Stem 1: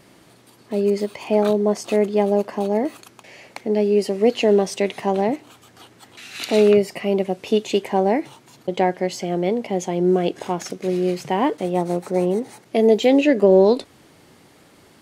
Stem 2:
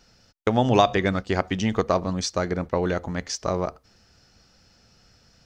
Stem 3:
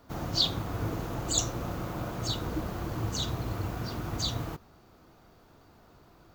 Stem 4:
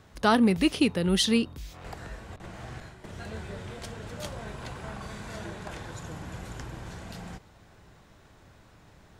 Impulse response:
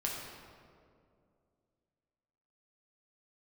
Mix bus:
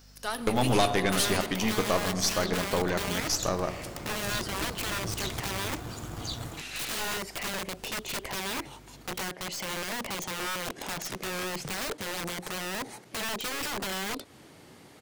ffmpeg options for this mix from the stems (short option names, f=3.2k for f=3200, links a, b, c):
-filter_complex "[0:a]acompressor=threshold=-22dB:ratio=6,aeval=exprs='(mod(21.1*val(0)+1,2)-1)/21.1':c=same,adelay=400,volume=2.5dB[a];[1:a]highshelf=f=4.5k:g=11,volume=-3dB,asplit=2[b][c];[c]volume=-10dB[d];[2:a]dynaudnorm=f=480:g=3:m=15dB,adelay=2050,volume=-15.5dB[e];[3:a]aemphasis=mode=production:type=riaa,aeval=exprs='val(0)+0.00631*(sin(2*PI*50*n/s)+sin(2*PI*2*50*n/s)/2+sin(2*PI*3*50*n/s)/3+sin(2*PI*4*50*n/s)/4+sin(2*PI*5*50*n/s)/5)':c=same,volume=-8dB,asplit=2[f][g];[g]volume=-14dB[h];[4:a]atrim=start_sample=2205[i];[d][h]amix=inputs=2:normalize=0[j];[j][i]afir=irnorm=-1:irlink=0[k];[a][b][e][f][k]amix=inputs=5:normalize=0,aeval=exprs='(tanh(7.94*val(0)+0.7)-tanh(0.7))/7.94':c=same"